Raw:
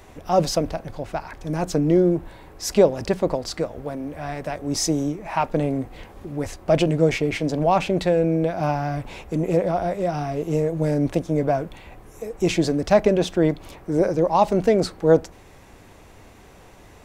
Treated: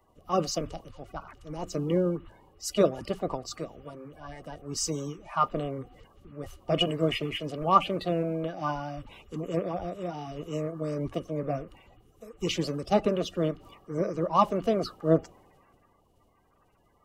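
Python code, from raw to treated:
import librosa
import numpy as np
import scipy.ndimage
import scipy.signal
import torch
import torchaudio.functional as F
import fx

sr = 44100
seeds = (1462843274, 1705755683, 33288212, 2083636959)

y = fx.spec_quant(x, sr, step_db=30)
y = fx.small_body(y, sr, hz=(1200.0, 2900.0), ring_ms=35, db=16)
y = fx.band_widen(y, sr, depth_pct=40)
y = F.gain(torch.from_numpy(y), -9.0).numpy()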